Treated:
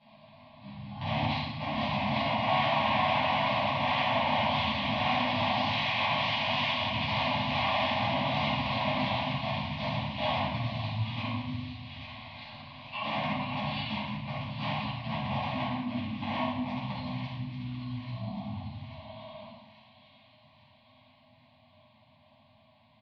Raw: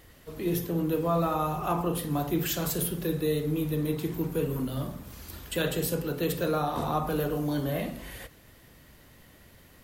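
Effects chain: Doppler pass-by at 2.52 s, 5 m/s, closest 4.4 m; peaking EQ 610 Hz +5.5 dB 1.4 oct; in parallel at +2 dB: compression 4:1, threshold -44 dBFS, peak gain reduction 18.5 dB; on the sum: integer overflow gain 27 dB; formant shift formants -4 st; Butterworth band-stop 950 Hz, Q 0.6; cabinet simulation 470–7000 Hz, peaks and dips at 920 Hz -7 dB, 1.4 kHz +4 dB, 2.6 kHz +8 dB, 3.8 kHz -9 dB; static phaser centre 610 Hz, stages 8; doubling 14 ms -13 dB; on a send: feedback echo behind a high-pass 359 ms, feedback 55%, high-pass 4.5 kHz, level -7.5 dB; on the sum: simulated room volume 65 m³, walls mixed, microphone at 3.6 m; speed mistake 78 rpm record played at 33 rpm

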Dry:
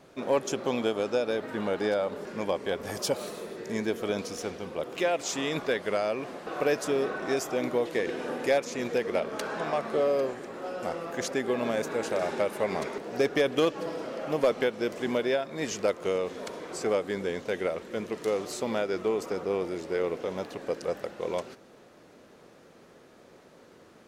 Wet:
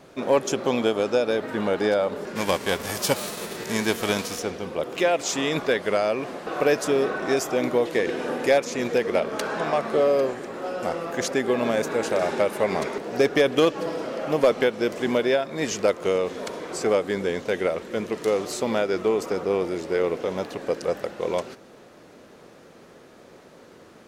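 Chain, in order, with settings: 2.35–4.38 s: formants flattened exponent 0.6; trim +5.5 dB

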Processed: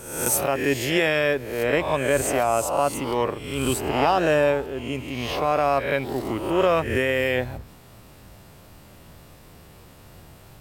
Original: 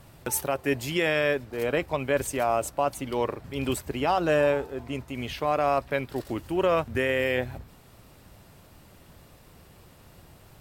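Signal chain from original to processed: reverse spectral sustain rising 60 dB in 0.77 s; trim +2.5 dB

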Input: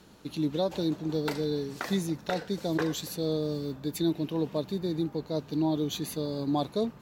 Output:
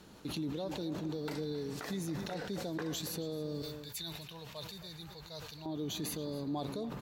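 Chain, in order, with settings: 3.62–5.66 s: amplifier tone stack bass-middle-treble 10-0-10; compression, threshold -32 dBFS, peak gain reduction 9 dB; peak limiter -28.5 dBFS, peak gain reduction 9.5 dB; echo from a far wall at 46 m, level -14 dB; decay stretcher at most 35 dB/s; trim -1 dB

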